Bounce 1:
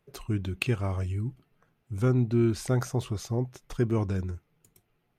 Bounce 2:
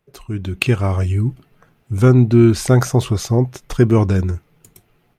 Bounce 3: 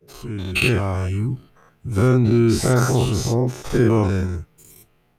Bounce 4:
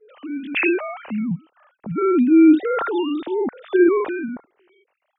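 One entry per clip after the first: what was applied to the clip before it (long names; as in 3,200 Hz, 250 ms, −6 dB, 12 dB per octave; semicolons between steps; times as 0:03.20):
automatic gain control gain up to 12.5 dB; level +2 dB
every bin's largest magnitude spread in time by 120 ms; level −7 dB
three sine waves on the formant tracks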